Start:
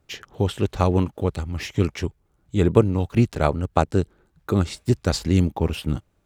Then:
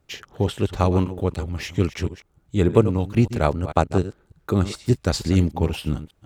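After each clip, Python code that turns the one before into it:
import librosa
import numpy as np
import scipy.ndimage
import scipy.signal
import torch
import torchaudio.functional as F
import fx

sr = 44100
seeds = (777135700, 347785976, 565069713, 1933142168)

y = fx.reverse_delay(x, sr, ms=149, wet_db=-12.5)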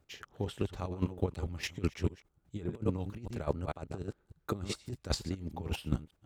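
y = fx.over_compress(x, sr, threshold_db=-21.0, ratio=-0.5)
y = fx.chopper(y, sr, hz=4.9, depth_pct=65, duty_pct=20)
y = y * librosa.db_to_amplitude(-7.0)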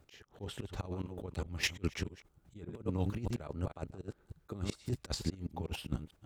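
y = fx.auto_swell(x, sr, attack_ms=214.0)
y = y * librosa.db_to_amplitude(5.5)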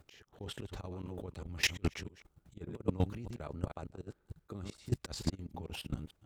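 y = fx.level_steps(x, sr, step_db=16)
y = 10.0 ** (-24.5 / 20.0) * (np.abs((y / 10.0 ** (-24.5 / 20.0) + 3.0) % 4.0 - 2.0) - 1.0)
y = y * librosa.db_to_amplitude(5.5)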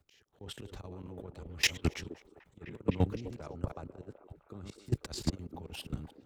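y = fx.echo_stepped(x, sr, ms=256, hz=390.0, octaves=0.7, feedback_pct=70, wet_db=-6.5)
y = fx.band_widen(y, sr, depth_pct=40)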